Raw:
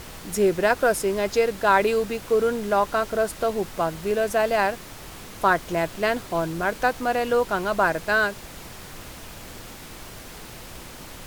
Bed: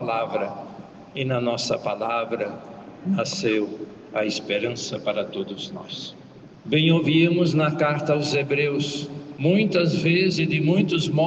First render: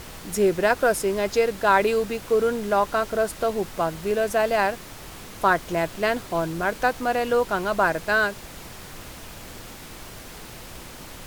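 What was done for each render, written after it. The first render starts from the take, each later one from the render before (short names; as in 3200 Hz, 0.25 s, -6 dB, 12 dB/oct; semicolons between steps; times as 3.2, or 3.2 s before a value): nothing audible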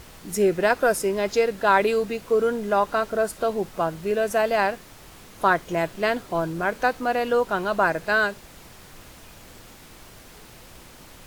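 noise print and reduce 6 dB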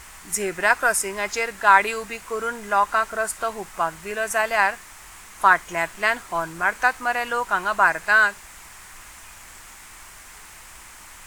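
graphic EQ 125/250/500/1000/2000/4000/8000 Hz -9/-6/-9/+6/+7/-4/+10 dB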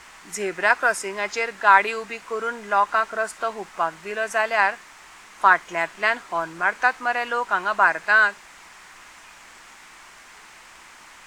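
three-band isolator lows -14 dB, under 170 Hz, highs -15 dB, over 6400 Hz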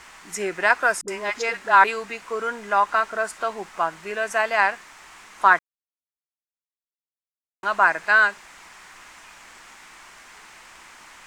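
1.01–1.84 dispersion highs, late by 69 ms, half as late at 430 Hz; 5.59–7.63 mute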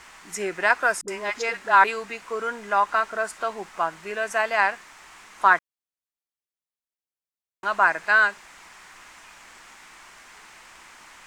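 gain -1.5 dB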